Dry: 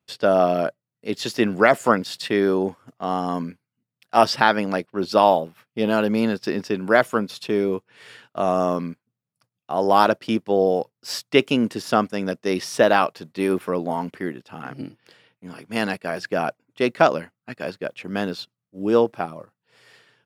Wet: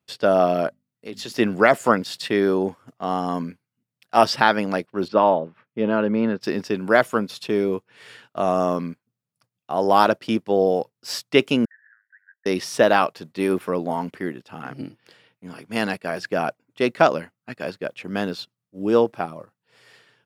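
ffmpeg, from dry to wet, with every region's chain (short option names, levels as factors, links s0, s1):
-filter_complex "[0:a]asettb=1/sr,asplit=3[s0][s1][s2];[s0]atrim=end=0.684[s3];[s1]atrim=start=0.68:end=1.32,asetpts=PTS-STARTPTS,afade=t=in:d=0.004:c=qsin,afade=t=out:st=0.636:d=0.004:c=qsin,bandreject=f=50:t=h:w=6,bandreject=f=100:t=h:w=6,bandreject=f=150:t=h:w=6,bandreject=f=200:t=h:w=6,bandreject=f=250:t=h:w=6,acompressor=threshold=0.0316:ratio=4:attack=3.2:release=140:knee=1:detection=peak[s4];[s2]atrim=start=1.316[s5];[s3][s4]acrossfade=d=0.004:c1=hsin:c2=qsin[s6];[s6][s5]acrossfade=d=0.004:c1=qsin:c2=hsin,asettb=1/sr,asplit=3[s7][s8][s9];[s7]atrim=end=5.084[s10];[s8]atrim=start=5.08:end=6.41,asetpts=PTS-STARTPTS,afade=t=in:d=0.004:c=qsin,afade=t=out:st=1.326:d=0.004:c=qsin,highpass=100,lowpass=2000,bandreject=f=750:w=6.4[s11];[s9]atrim=start=6.406[s12];[s10][s11]acrossfade=d=0.004:c1=hsin:c2=qsin[s13];[s13][s12]acrossfade=d=0.004:c1=qsin:c2=hsin,asettb=1/sr,asplit=3[s14][s15][s16];[s14]atrim=end=11.654[s17];[s15]atrim=start=11.65:end=12.46,asetpts=PTS-STARTPTS,afade=t=in:d=0.004:c=qsin,afade=t=out:st=0.806:d=0.004:c=qsin,acompressor=threshold=0.0282:ratio=12:attack=3.2:release=140:knee=1:detection=peak,asuperpass=centerf=1700:order=8:qfactor=4.4[s18];[s16]atrim=start=12.456[s19];[s17][s18]acrossfade=d=0.004:c1=hsin:c2=qsin[s20];[s20][s19]acrossfade=d=0.004:c1=qsin:c2=hsin"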